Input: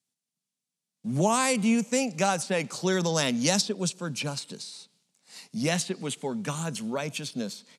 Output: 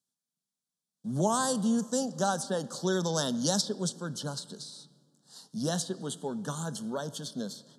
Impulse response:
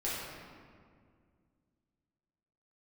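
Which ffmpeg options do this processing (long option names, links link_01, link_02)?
-filter_complex "[0:a]asuperstop=centerf=2300:order=8:qfactor=1.6,asplit=2[link_01][link_02];[1:a]atrim=start_sample=2205,adelay=5[link_03];[link_02][link_03]afir=irnorm=-1:irlink=0,volume=-22.5dB[link_04];[link_01][link_04]amix=inputs=2:normalize=0,volume=-3.5dB"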